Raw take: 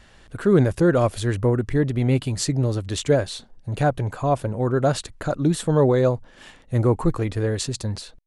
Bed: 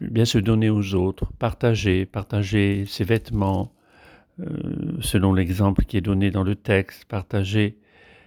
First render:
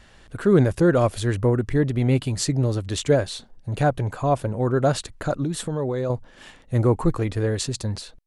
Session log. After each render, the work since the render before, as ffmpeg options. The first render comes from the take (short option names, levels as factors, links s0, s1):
-filter_complex "[0:a]asettb=1/sr,asplit=3[s0][s1][s2];[s0]atrim=end=5.444[s3];[s1]atrim=start=5.44:end=6.1,asetpts=PTS-STARTPTS,afade=t=in:d=0.004:c=qsin,afade=t=out:st=0.656:d=0.004:c=qsin,acompressor=threshold=0.0631:ratio=3:attack=3.2:release=140:knee=1:detection=peak[s4];[s2]atrim=start=6.096[s5];[s3][s4]acrossfade=d=0.004:c1=hsin:c2=qsin[s6];[s6][s5]acrossfade=d=0.004:c1=qsin:c2=hsin"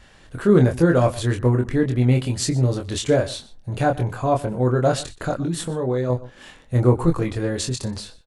-filter_complex "[0:a]asplit=2[s0][s1];[s1]adelay=24,volume=0.631[s2];[s0][s2]amix=inputs=2:normalize=0,asplit=2[s3][s4];[s4]adelay=122.4,volume=0.126,highshelf=f=4000:g=-2.76[s5];[s3][s5]amix=inputs=2:normalize=0"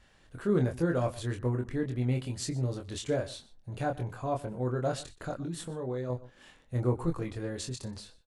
-af "volume=0.251"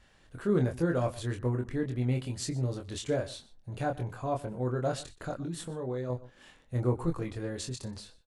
-af anull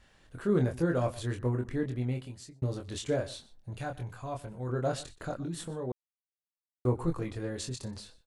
-filter_complex "[0:a]asettb=1/sr,asplit=3[s0][s1][s2];[s0]atrim=end=3.734[s3];[s1]atrim=start=3.73:end=4.69,asetpts=PTS-STARTPTS,afade=t=in:d=0.004:c=qsin,afade=t=out:st=0.956:d=0.004:c=qsin,equalizer=f=390:w=0.42:g=-8[s4];[s2]atrim=start=4.686[s5];[s3][s4]acrossfade=d=0.004:c1=hsin:c2=qsin[s6];[s6][s5]acrossfade=d=0.004:c1=qsin:c2=hsin,asplit=4[s7][s8][s9][s10];[s7]atrim=end=2.62,asetpts=PTS-STARTPTS,afade=t=out:st=1.85:d=0.77[s11];[s8]atrim=start=2.62:end=5.92,asetpts=PTS-STARTPTS,afade=t=in:d=0.004:c=hsin,afade=t=out:st=3.296:d=0.004:c=hsin[s12];[s9]atrim=start=5.92:end=6.85,asetpts=PTS-STARTPTS,volume=0[s13];[s10]atrim=start=6.85,asetpts=PTS-STARTPTS,afade=t=in:d=0.004:c=hsin[s14];[s11][s12][s13][s14]concat=n=4:v=0:a=1"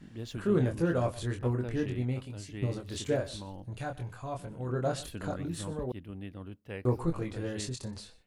-filter_complex "[1:a]volume=0.0794[s0];[0:a][s0]amix=inputs=2:normalize=0"